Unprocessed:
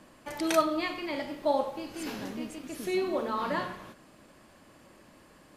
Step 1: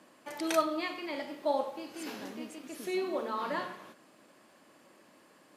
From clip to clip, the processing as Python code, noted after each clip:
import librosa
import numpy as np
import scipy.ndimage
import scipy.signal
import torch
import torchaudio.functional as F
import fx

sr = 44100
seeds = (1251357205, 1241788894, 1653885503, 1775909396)

y = scipy.signal.sosfilt(scipy.signal.butter(2, 230.0, 'highpass', fs=sr, output='sos'), x)
y = F.gain(torch.from_numpy(y), -3.0).numpy()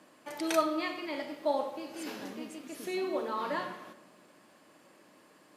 y = fx.room_shoebox(x, sr, seeds[0], volume_m3=1400.0, walls='mixed', distance_m=0.46)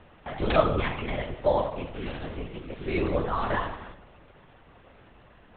y = fx.lpc_vocoder(x, sr, seeds[1], excitation='whisper', order=10)
y = F.gain(torch.from_numpy(y), 6.5).numpy()